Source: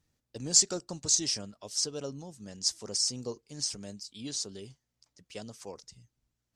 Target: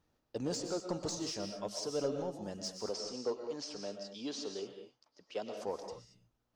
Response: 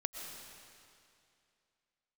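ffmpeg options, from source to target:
-filter_complex "[0:a]acompressor=threshold=0.0282:ratio=10,equalizer=f=125:t=o:w=1:g=-4,equalizer=f=2000:t=o:w=1:g=-9,equalizer=f=4000:t=o:w=1:g=-4,equalizer=f=8000:t=o:w=1:g=-10,asplit=2[s0][s1];[s1]highpass=f=720:p=1,volume=3.55,asoftclip=type=tanh:threshold=0.0422[s2];[s0][s2]amix=inputs=2:normalize=0,lowpass=f=2300:p=1,volume=0.501,asettb=1/sr,asplit=3[s3][s4][s5];[s3]atrim=end=2.894[s6];[s4]atrim=start=2.89:end=5.57,asetpts=PTS-STARTPTS,afade=t=in:d=0.004:c=qsin,afade=t=out:st=2.676:d=0.004:c=qsin,acrossover=split=240 7000:gain=0.2 1 0.0708[s7][s8][s9];[s7][s8][s9]amix=inputs=3:normalize=0[s10];[s5]atrim=start=5.566[s11];[s6][s10]acrossfade=d=0.004:c1=hsin:c2=qsin[s12];[s12][s11]acrossfade=d=0.004:c1=qsin:c2=hsin[s13];[1:a]atrim=start_sample=2205,afade=t=out:st=0.29:d=0.01,atrim=end_sample=13230[s14];[s13][s14]afir=irnorm=-1:irlink=0,volume=1.88"

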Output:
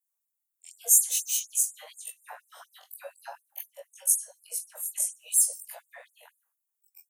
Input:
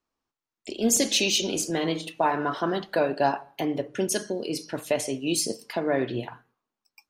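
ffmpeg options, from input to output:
-af "afftfilt=real='re':imag='-im':win_size=2048:overlap=0.75,aexciter=amount=10.7:drive=8.1:freq=7000,afftfilt=real='re*gte(b*sr/1024,450*pow(7200/450,0.5+0.5*sin(2*PI*4.1*pts/sr)))':imag='im*gte(b*sr/1024,450*pow(7200/450,0.5+0.5*sin(2*PI*4.1*pts/sr)))':win_size=1024:overlap=0.75,volume=0.355"

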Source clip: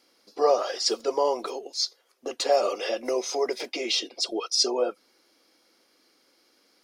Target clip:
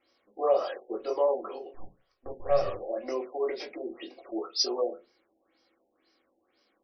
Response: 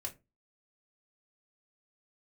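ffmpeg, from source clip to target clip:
-filter_complex "[0:a]asettb=1/sr,asplit=3[s0][s1][s2];[s0]atrim=end=1.744[s3];[s1]atrim=start=1.74:end=2.8,asetpts=PTS-STARTPTS,afade=t=in:d=0.004:c=qsin,afade=t=out:st=1.056:d=0.004:c=qsin,aeval=exprs='if(lt(val(0),0),0.447*val(0),val(0))':c=same[s4];[s2]atrim=start=2.796[s5];[s3][s4]acrossfade=d=0.004:c1=hsin:c2=qsin[s6];[s6][s5]acrossfade=d=0.004:c1=qsin:c2=hsin[s7];[1:a]atrim=start_sample=2205[s8];[s7][s8]afir=irnorm=-1:irlink=0,afftfilt=real='re*lt(b*sr/1024,890*pow(6200/890,0.5+0.5*sin(2*PI*2*pts/sr)))':imag='im*lt(b*sr/1024,890*pow(6200/890,0.5+0.5*sin(2*PI*2*pts/sr)))':win_size=1024:overlap=0.75,volume=0.708"

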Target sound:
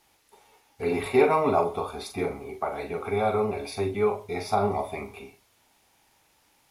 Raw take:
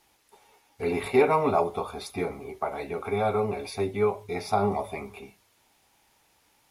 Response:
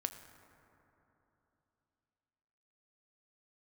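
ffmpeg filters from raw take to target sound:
-filter_complex "[0:a]asplit=2[s0][s1];[1:a]atrim=start_sample=2205,atrim=end_sample=4410,adelay=42[s2];[s1][s2]afir=irnorm=-1:irlink=0,volume=0.473[s3];[s0][s3]amix=inputs=2:normalize=0"

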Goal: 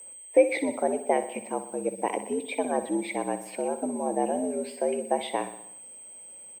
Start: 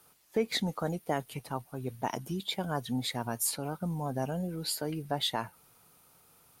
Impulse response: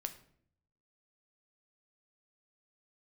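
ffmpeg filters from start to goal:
-filter_complex "[0:a]firequalizer=gain_entry='entry(130,0);entry(410,12);entry(760,5);entry(1200,-9);entry(2200,10);entry(3900,-14);entry(5500,-17);entry(8900,-24)':delay=0.05:min_phase=1,aeval=exprs='val(0)+0.00891*sin(2*PI*8200*n/s)':c=same,aeval=exprs='sgn(val(0))*max(abs(val(0))-0.00133,0)':c=same,afreqshift=78,asplit=2[s0][s1];[s1]aecho=0:1:62|124|186|248|310|372:0.251|0.143|0.0816|0.0465|0.0265|0.0151[s2];[s0][s2]amix=inputs=2:normalize=0"

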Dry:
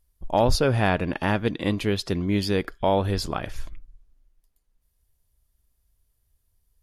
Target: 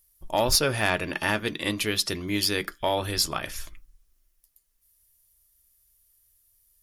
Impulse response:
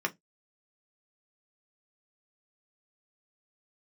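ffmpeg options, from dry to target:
-filter_complex "[0:a]crystalizer=i=6.5:c=0,asoftclip=type=tanh:threshold=0.596,asplit=2[s0][s1];[1:a]atrim=start_sample=2205[s2];[s1][s2]afir=irnorm=-1:irlink=0,volume=0.355[s3];[s0][s3]amix=inputs=2:normalize=0,volume=0.398"

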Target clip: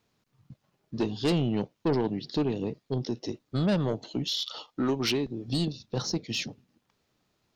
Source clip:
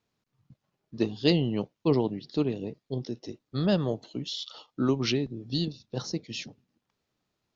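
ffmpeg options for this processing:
-filter_complex "[0:a]asettb=1/sr,asplit=3[s0][s1][s2];[s0]atrim=end=4.674[s3];[s1]atrim=start=4.67:end=5.48,asetpts=PTS-STARTPTS,afade=t=in:d=0.004:c=qsin,afade=t=out:st=0.806:d=0.004:c=qsin,equalizer=f=130:t=o:w=1.9:g=-6.5[s4];[s2]atrim=start=5.476[s5];[s3][s4]acrossfade=d=0.004:c1=hsin:c2=qsin[s6];[s6][s5]acrossfade=d=0.004:c1=qsin:c2=hsin,asplit=2[s7][s8];[s8]acompressor=threshold=0.0251:ratio=6,volume=1.12[s9];[s7][s9]amix=inputs=2:normalize=0,asoftclip=type=tanh:threshold=0.1"

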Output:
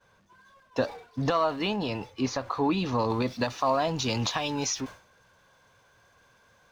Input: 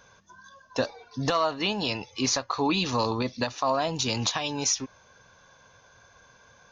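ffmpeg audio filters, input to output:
-af "aeval=exprs='val(0)+0.5*0.0119*sgn(val(0))':c=same,agate=range=0.0224:threshold=0.0224:ratio=3:detection=peak,asetnsamples=n=441:p=0,asendcmd='1.76 lowpass f 1200;3.1 lowpass f 3400',lowpass=f=2000:p=1"

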